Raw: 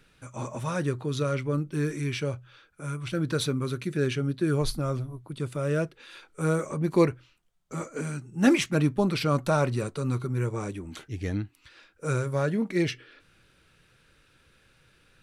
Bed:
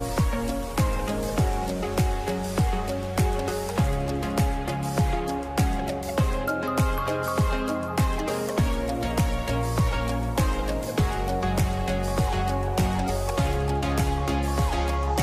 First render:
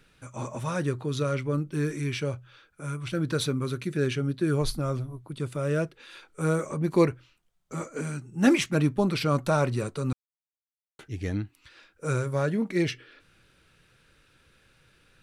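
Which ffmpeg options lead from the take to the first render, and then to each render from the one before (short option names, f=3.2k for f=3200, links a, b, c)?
-filter_complex "[0:a]asplit=3[a][b][c];[a]atrim=end=10.13,asetpts=PTS-STARTPTS,afade=t=out:st=10.126:d=0.004:c=hsin[d];[b]atrim=start=10.13:end=10.99,asetpts=PTS-STARTPTS,volume=0[e];[c]atrim=start=10.99,asetpts=PTS-STARTPTS,afade=t=in:d=0.004:c=hsin[f];[d][e][f]concat=n=3:v=0:a=1"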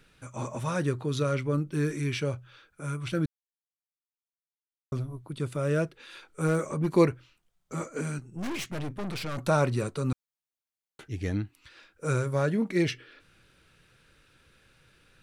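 -filter_complex "[0:a]asettb=1/sr,asplit=3[a][b][c];[a]atrim=end=6.474[d];[b]atrim=start=6.47:end=6.92,asetpts=PTS-STARTPTS,afade=t=in:d=0.004:c=qsin,afade=t=out:st=0.446:d=0.004:c=qsin,volume=20dB,asoftclip=hard,volume=-20dB[e];[c]atrim=start=6.916[f];[d][e]acrossfade=d=0.004:c1=hsin:c2=qsin[g];[g][f]acrossfade=d=0.004:c1=qsin:c2=hsin,asettb=1/sr,asplit=3[h][i][j];[h]atrim=end=8.184[k];[i]atrim=start=8.18:end=9.38,asetpts=PTS-STARTPTS,afade=t=in:d=0.004:c=qsin,afade=t=out:st=1.196:d=0.004:c=qsin,aeval=exprs='(tanh(39.8*val(0)+0.55)-tanh(0.55))/39.8':c=same[l];[j]atrim=start=9.376[m];[k][l]acrossfade=d=0.004:c1=hsin:c2=qsin[n];[n][m]acrossfade=d=0.004:c1=qsin:c2=hsin,asplit=3[o][p][q];[o]atrim=end=3.26,asetpts=PTS-STARTPTS,afade=t=out:st=3.256:d=0.004:c=hsin[r];[p]atrim=start=3.26:end=4.92,asetpts=PTS-STARTPTS,volume=0[s];[q]atrim=start=4.92,asetpts=PTS-STARTPTS,afade=t=in:d=0.004:c=hsin[t];[r][s][t]concat=n=3:v=0:a=1"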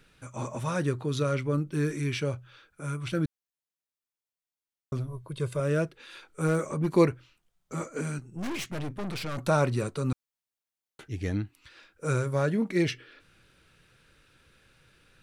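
-filter_complex "[0:a]asettb=1/sr,asplit=3[a][b][c];[a]atrim=end=5.074[d];[b]atrim=start=5.07:end=5.6,asetpts=PTS-STARTPTS,afade=t=in:d=0.004:c=qsin,afade=t=out:st=0.526:d=0.004:c=qsin,aecho=1:1:1.9:0.65,atrim=end_sample=23373[e];[c]atrim=start=5.596[f];[d][e]acrossfade=d=0.004:c1=hsin:c2=qsin[g];[g][f]acrossfade=d=0.004:c1=qsin:c2=hsin"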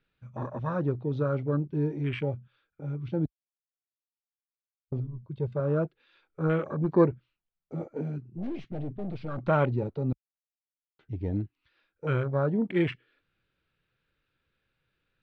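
-af "lowpass=f=4.2k:w=0.5412,lowpass=f=4.2k:w=1.3066,afwtdn=0.02"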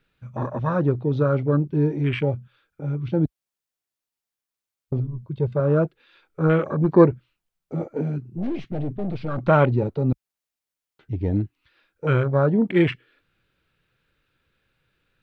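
-af "volume=7.5dB"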